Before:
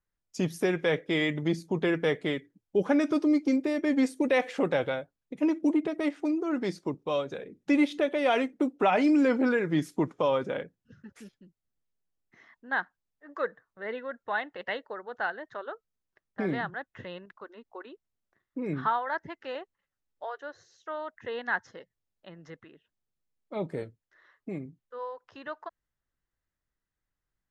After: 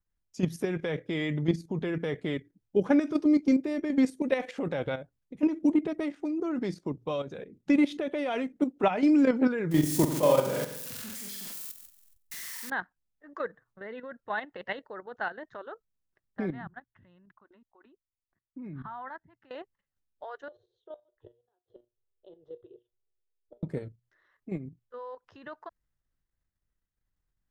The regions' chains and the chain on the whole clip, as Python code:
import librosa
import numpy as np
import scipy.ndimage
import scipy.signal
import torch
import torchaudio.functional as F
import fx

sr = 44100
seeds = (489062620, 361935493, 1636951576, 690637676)

y = fx.chain(x, sr, fx.crossing_spikes(level_db=-24.5),
    fx.room_flutter(wall_m=7.9, rt60_s=0.85),
    fx.dynamic_eq(hz=600.0, q=4.0, threshold_db=-39.0, ratio=4.0, max_db=5), at=(9.71, 12.7))
y = fx.chain(y, sr, fx.lowpass(hz=1300.0, slope=6),
    fx.peak_eq(hz=470.0, db=-14.5, octaves=0.52),
    fx.level_steps(step_db=20), at=(16.5, 19.51))
y = fx.chain(y, sr, fx.curve_eq(hz=(110.0, 230.0, 390.0, 2200.0, 3400.0, 5400.0), db=(0, -24, 15, -26, 3, -23)),
    fx.gate_flip(shuts_db=-28.0, range_db=-38),
    fx.comb_fb(f0_hz=120.0, decay_s=0.23, harmonics='all', damping=0.0, mix_pct=70), at=(20.48, 23.63))
y = fx.low_shelf(y, sr, hz=220.0, db=10.0)
y = fx.hum_notches(y, sr, base_hz=60, count=2)
y = fx.level_steps(y, sr, step_db=10)